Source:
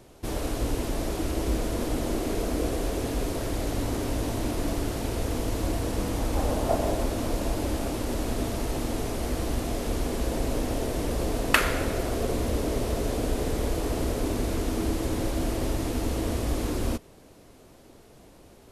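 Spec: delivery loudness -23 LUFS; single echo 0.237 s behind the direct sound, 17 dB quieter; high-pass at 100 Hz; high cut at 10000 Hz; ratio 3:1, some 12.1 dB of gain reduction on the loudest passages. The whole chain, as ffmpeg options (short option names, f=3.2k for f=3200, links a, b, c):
-af "highpass=100,lowpass=10k,acompressor=threshold=-33dB:ratio=3,aecho=1:1:237:0.141,volume=12.5dB"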